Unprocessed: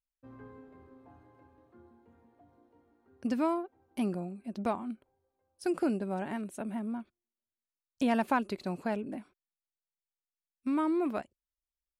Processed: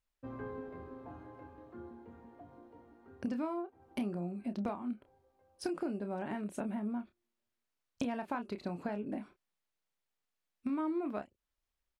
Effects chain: high shelf 5400 Hz -11.5 dB; compressor 6:1, threshold -44 dBFS, peak gain reduction 19 dB; doubler 29 ms -9 dB; gain +8.5 dB

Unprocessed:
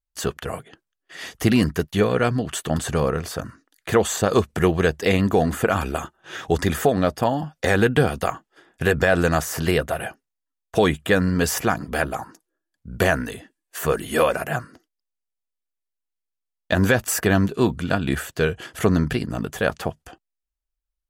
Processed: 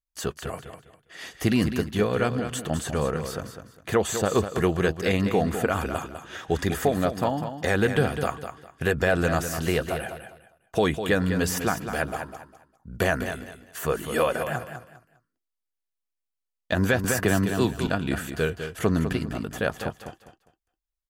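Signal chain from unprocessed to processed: feedback echo 0.202 s, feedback 25%, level -9 dB; 17.04–17.87 three-band squash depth 70%; gain -4.5 dB

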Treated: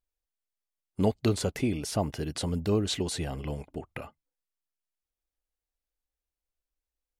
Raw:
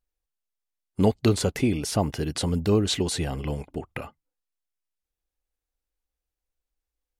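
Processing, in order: bell 630 Hz +3.5 dB 0.2 oct; gain -5 dB

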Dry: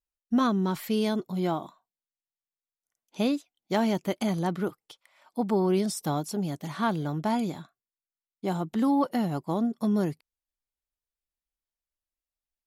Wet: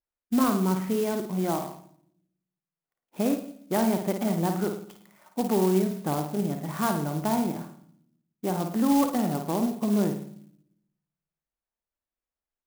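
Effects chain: low shelf 120 Hz -9 dB; in parallel at -2.5 dB: compressor, threshold -33 dBFS, peak gain reduction 12 dB; on the sum: air absorption 410 m; flutter echo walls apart 9.2 m, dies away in 0.53 s; on a send at -17.5 dB: reverb RT60 0.70 s, pre-delay 46 ms; on the sum: clock jitter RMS 0.06 ms

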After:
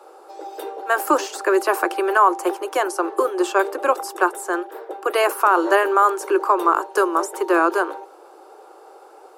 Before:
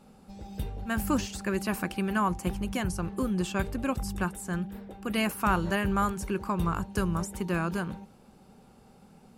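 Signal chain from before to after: steep high-pass 320 Hz 96 dB/oct; resonant high shelf 1700 Hz -7.5 dB, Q 1.5; maximiser +18.5 dB; gain -3.5 dB

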